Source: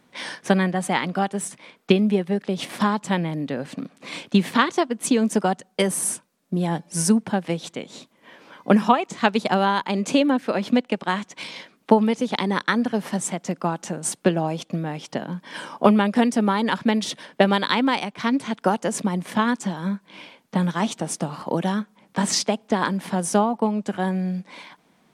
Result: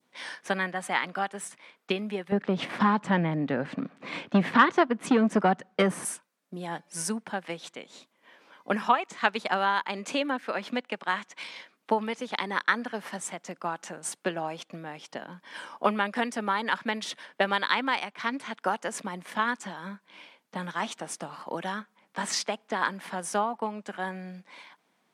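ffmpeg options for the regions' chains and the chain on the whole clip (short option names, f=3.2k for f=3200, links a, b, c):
-filter_complex "[0:a]asettb=1/sr,asplit=3[a][b][c];[a]atrim=end=2.324[d];[b]atrim=start=2.32:end=6.05,asetpts=PTS-STARTPTS,afade=t=in:d=0.004:c=qsin,afade=t=out:st=3.726:d=0.004:c=qsin,aemphasis=mode=reproduction:type=riaa,acontrast=62[e];[c]atrim=start=6.046[f];[d][e]acrossfade=d=0.004:c1=hsin:c2=qsin[g];[g][f]acrossfade=d=0.004:c1=qsin:c2=hsin,highpass=f=410:p=1,adynamicequalizer=threshold=0.0141:dfrequency=1600:dqfactor=0.74:tfrequency=1600:tqfactor=0.74:attack=5:release=100:ratio=0.375:range=4:mode=boostabove:tftype=bell,volume=-8.5dB"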